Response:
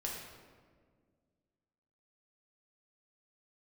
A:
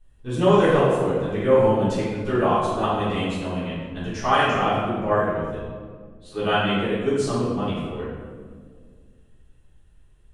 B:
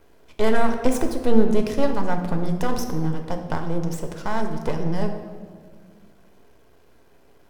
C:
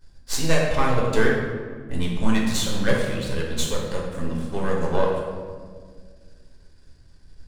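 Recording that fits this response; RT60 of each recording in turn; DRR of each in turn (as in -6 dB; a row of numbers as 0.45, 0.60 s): C; 1.8, 1.8, 1.8 s; -11.5, 4.0, -3.0 dB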